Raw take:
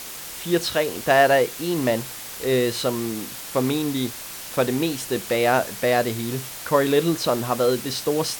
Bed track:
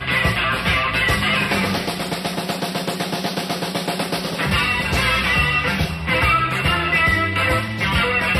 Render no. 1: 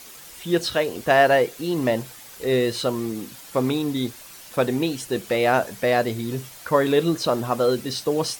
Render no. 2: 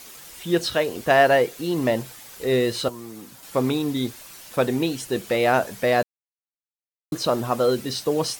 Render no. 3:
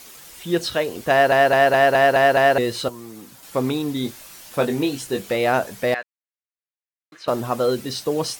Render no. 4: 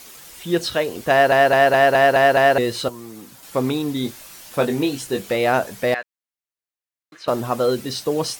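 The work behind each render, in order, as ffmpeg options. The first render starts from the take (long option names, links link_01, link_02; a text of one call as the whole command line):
ffmpeg -i in.wav -af "afftdn=noise_reduction=9:noise_floor=-36" out.wav
ffmpeg -i in.wav -filter_complex "[0:a]asettb=1/sr,asplit=3[link_01][link_02][link_03];[link_01]atrim=end=2.884[link_04];[link_02]atrim=start=2.88:end=3.43,asetpts=PTS-STARTPTS,afade=type=in:duration=0.004:curve=qsin,afade=type=out:start_time=0.546:duration=0.004:curve=qsin,acrossover=split=210|710|1500|4600[link_05][link_06][link_07][link_08][link_09];[link_05]acompressor=threshold=-47dB:ratio=3[link_10];[link_06]acompressor=threshold=-43dB:ratio=3[link_11];[link_07]acompressor=threshold=-44dB:ratio=3[link_12];[link_08]acompressor=threshold=-60dB:ratio=3[link_13];[link_09]acompressor=threshold=-47dB:ratio=3[link_14];[link_10][link_11][link_12][link_13][link_14]amix=inputs=5:normalize=0[link_15];[link_03]atrim=start=3.426[link_16];[link_04][link_15]acrossfade=duration=0.004:curve1=hsin:curve2=qsin[link_17];[link_17][link_16]acrossfade=duration=0.004:curve1=qsin:curve2=hsin,asplit=3[link_18][link_19][link_20];[link_18]atrim=end=6.03,asetpts=PTS-STARTPTS,afade=type=out:start_time=6.026:duration=0.004:curve=hsin[link_21];[link_19]atrim=start=6.03:end=7.12,asetpts=PTS-STARTPTS,volume=0[link_22];[link_20]atrim=start=7.12,asetpts=PTS-STARTPTS,afade=type=in:duration=0.004:curve=hsin[link_23];[link_21][link_22][link_23]concat=n=3:v=0:a=1" out.wav
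ffmpeg -i in.wav -filter_complex "[0:a]asettb=1/sr,asplit=3[link_01][link_02][link_03];[link_01]atrim=end=4.024[link_04];[link_02]atrim=start=4.02:end=5.33,asetpts=PTS-STARTPTS,afade=type=in:duration=0.004:curve=qsin,afade=type=out:start_time=1.306:duration=0.004:curve=qsin,asplit=2[link_05][link_06];[link_06]adelay=21,volume=-6dB[link_07];[link_05][link_07]amix=inputs=2:normalize=0,atrim=end_sample=57771[link_08];[link_03]atrim=start=5.326[link_09];[link_04][link_08]acrossfade=duration=0.004:curve1=hsin:curve2=qsin[link_10];[link_10][link_09]acrossfade=duration=0.004:curve1=qsin:curve2=hsin,asettb=1/sr,asplit=3[link_11][link_12][link_13];[link_11]atrim=end=5.944[link_14];[link_12]atrim=start=5.94:end=7.28,asetpts=PTS-STARTPTS,afade=type=in:duration=0.004:curve=qsin,afade=type=out:start_time=1.336:duration=0.004:curve=qsin,bandpass=frequency=1900:width_type=q:width=2[link_15];[link_13]atrim=start=7.276[link_16];[link_14][link_15]acrossfade=duration=0.004:curve1=hsin:curve2=qsin[link_17];[link_17][link_16]acrossfade=duration=0.004:curve1=qsin:curve2=hsin,asplit=8[link_18][link_19][link_20][link_21][link_22][link_23][link_24][link_25];[link_18]atrim=end=1.322[link_26];[link_19]atrim=start=1.108:end=1.322[link_27];[link_20]atrim=start=1.108:end=1.322[link_28];[link_21]atrim=start=1.108:end=1.322[link_29];[link_22]atrim=start=1.108:end=1.322[link_30];[link_23]atrim=start=1.108:end=1.322[link_31];[link_24]atrim=start=1.108:end=1.322[link_32];[link_25]atrim=start=2.578[link_33];[link_26][link_27]acrossfade=duration=0.004:curve1=hsin:curve2=hsin[link_34];[link_34][link_28]acrossfade=duration=0.004:curve1=hsin:curve2=hsin[link_35];[link_35][link_29]acrossfade=duration=0.004:curve1=hsin:curve2=hsin[link_36];[link_36][link_30]acrossfade=duration=0.004:curve1=hsin:curve2=hsin[link_37];[link_37][link_31]acrossfade=duration=0.004:curve1=hsin:curve2=hsin[link_38];[link_38][link_32]acrossfade=duration=0.004:curve1=hsin:curve2=hsin[link_39];[link_39][link_33]acrossfade=duration=0.004:curve1=hsin:curve2=hsin" out.wav
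ffmpeg -i in.wav -af "volume=1dB" out.wav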